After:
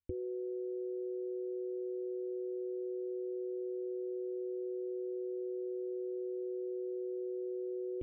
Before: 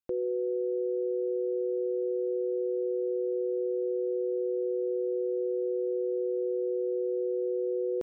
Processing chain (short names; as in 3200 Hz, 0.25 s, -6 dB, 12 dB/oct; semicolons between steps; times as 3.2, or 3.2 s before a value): vocal tract filter i; resonant low shelf 130 Hz +14 dB, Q 3; gain +7.5 dB